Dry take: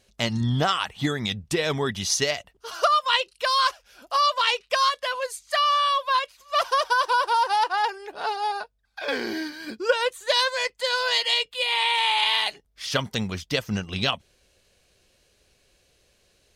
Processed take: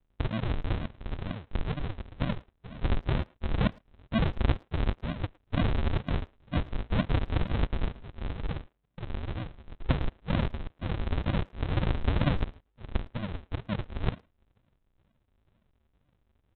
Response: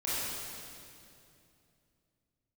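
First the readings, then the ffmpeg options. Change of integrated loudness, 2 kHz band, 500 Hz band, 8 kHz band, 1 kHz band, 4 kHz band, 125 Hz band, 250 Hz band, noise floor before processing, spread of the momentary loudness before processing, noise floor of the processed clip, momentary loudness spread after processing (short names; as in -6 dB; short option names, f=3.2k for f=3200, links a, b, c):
-9.0 dB, -15.0 dB, -10.5 dB, under -40 dB, -18.0 dB, -20.0 dB, +3.5 dB, -0.5 dB, -65 dBFS, 9 LU, -74 dBFS, 10 LU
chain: -filter_complex "[0:a]aemphasis=mode=production:type=50fm,aresample=8000,acrusher=samples=36:mix=1:aa=0.000001:lfo=1:lforange=36:lforate=2.1,aresample=44100,asplit=2[a][b];[b]adelay=110,highpass=300,lowpass=3.4k,asoftclip=type=hard:threshold=-16.5dB,volume=-24dB[c];[a][c]amix=inputs=2:normalize=0,volume=-5dB"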